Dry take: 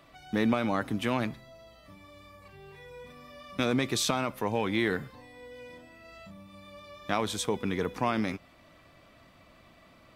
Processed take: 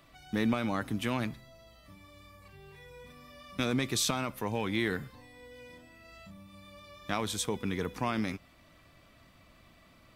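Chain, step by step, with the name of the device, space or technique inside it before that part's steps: smiley-face EQ (low shelf 95 Hz +5.5 dB; bell 610 Hz -3 dB 1.6 oct; high shelf 6200 Hz +5.5 dB); gain -2.5 dB

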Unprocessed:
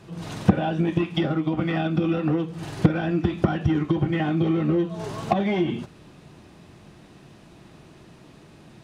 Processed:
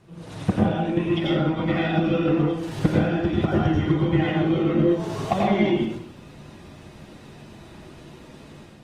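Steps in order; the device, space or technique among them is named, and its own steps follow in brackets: speakerphone in a meeting room (reverb RT60 0.65 s, pre-delay 82 ms, DRR -3.5 dB; AGC gain up to 6 dB; gain -6 dB; Opus 24 kbps 48000 Hz)

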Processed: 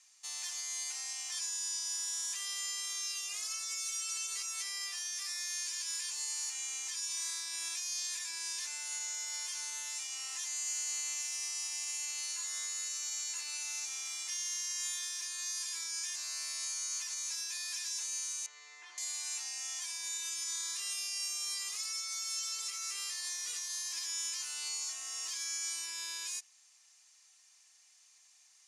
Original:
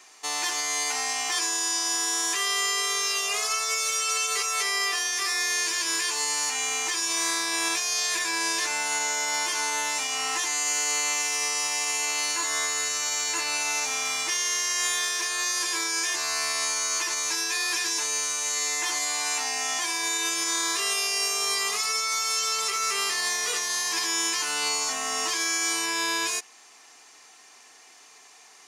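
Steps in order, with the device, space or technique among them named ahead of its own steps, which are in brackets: 18.46–18.98 LPF 2000 Hz 12 dB/oct; piezo pickup straight into a mixer (LPF 8900 Hz 12 dB/oct; differentiator); gain -7.5 dB

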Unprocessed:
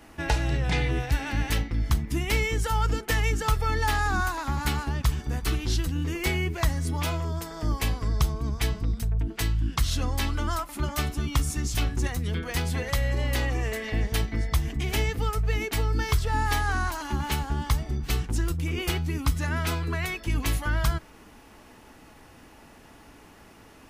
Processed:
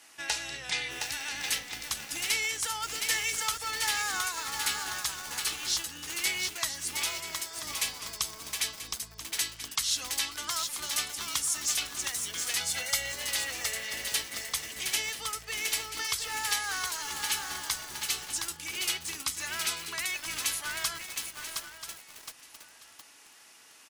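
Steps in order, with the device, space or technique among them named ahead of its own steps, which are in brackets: 12.6–13.12 comb 1.4 ms, depth 94%; piezo pickup straight into a mixer (LPF 8700 Hz 12 dB/oct; differentiator); feedback echo 0.985 s, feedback 21%, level -12 dB; lo-fi delay 0.716 s, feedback 55%, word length 8-bit, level -3.5 dB; gain +8.5 dB

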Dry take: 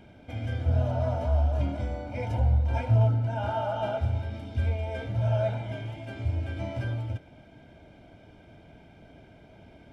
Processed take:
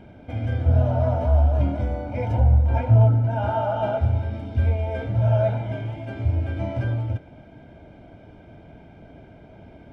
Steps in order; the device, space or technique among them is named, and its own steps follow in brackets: through cloth (high shelf 2800 Hz -12.5 dB); 2.43–3.31 high shelf 4200 Hz -6 dB; gain +6.5 dB

